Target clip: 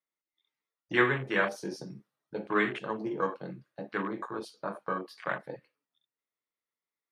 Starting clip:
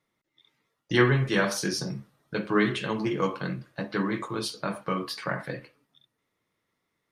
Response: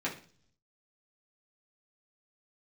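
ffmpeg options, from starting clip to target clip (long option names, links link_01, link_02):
-af "highpass=frequency=200:poles=1,afwtdn=0.0251,lowshelf=frequency=310:gain=-9"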